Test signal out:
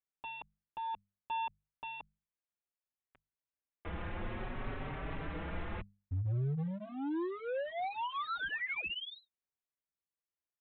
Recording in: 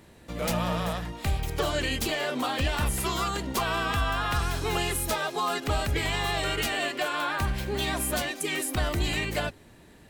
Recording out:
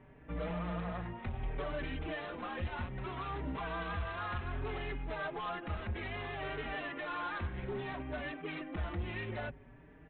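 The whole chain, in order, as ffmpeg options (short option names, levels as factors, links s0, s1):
-filter_complex "[0:a]alimiter=limit=0.0794:level=0:latency=1:release=104,lowpass=f=2400:w=0.5412,lowpass=f=2400:w=1.3066,bandreject=f=50:t=h:w=6,bandreject=f=100:t=h:w=6,bandreject=f=150:t=h:w=6,bandreject=f=200:t=h:w=6,aresample=8000,volume=39.8,asoftclip=hard,volume=0.0251,aresample=44100,lowshelf=f=160:g=4.5,asplit=2[s0][s1];[s1]adelay=4.8,afreqshift=0.62[s2];[s0][s2]amix=inputs=2:normalize=1,volume=0.794"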